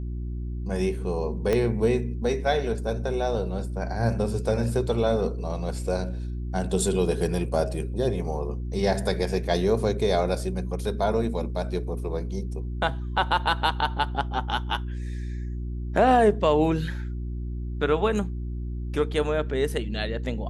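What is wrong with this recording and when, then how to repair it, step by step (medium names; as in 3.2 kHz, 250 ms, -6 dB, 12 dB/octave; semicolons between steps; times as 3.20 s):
hum 60 Hz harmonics 6 -31 dBFS
1.53 s: pop -12 dBFS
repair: de-click; de-hum 60 Hz, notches 6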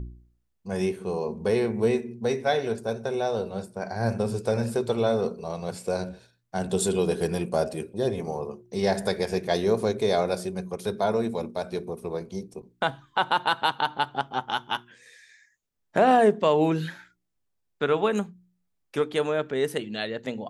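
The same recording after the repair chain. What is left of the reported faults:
1.53 s: pop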